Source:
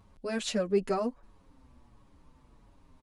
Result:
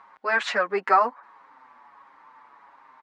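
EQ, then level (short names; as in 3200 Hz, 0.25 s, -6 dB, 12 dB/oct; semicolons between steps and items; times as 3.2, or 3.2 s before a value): HPF 530 Hz 12 dB/oct; LPF 4000 Hz 12 dB/oct; band shelf 1300 Hz +13.5 dB; +6.0 dB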